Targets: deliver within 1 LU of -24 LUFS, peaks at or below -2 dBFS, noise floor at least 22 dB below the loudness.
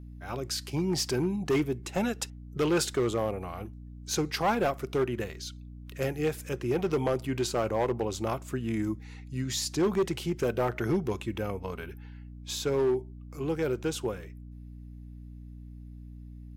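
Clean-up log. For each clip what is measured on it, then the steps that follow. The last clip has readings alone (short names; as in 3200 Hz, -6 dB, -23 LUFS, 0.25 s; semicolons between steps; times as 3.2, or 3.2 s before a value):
clipped 1.3%; flat tops at -21.0 dBFS; hum 60 Hz; harmonics up to 300 Hz; hum level -42 dBFS; loudness -30.5 LUFS; peak -21.0 dBFS; loudness target -24.0 LUFS
-> clip repair -21 dBFS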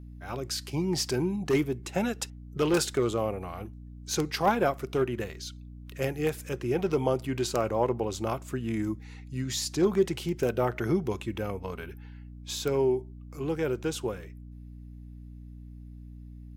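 clipped 0.0%; hum 60 Hz; harmonics up to 300 Hz; hum level -42 dBFS
-> de-hum 60 Hz, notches 5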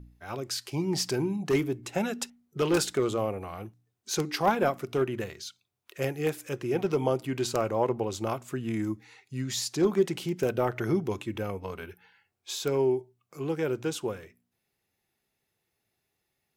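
hum none; loudness -30.0 LUFS; peak -12.0 dBFS; loudness target -24.0 LUFS
-> gain +6 dB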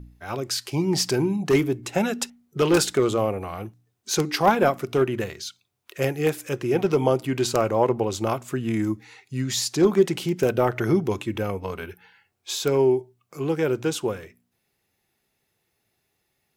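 loudness -24.0 LUFS; peak -6.0 dBFS; noise floor -75 dBFS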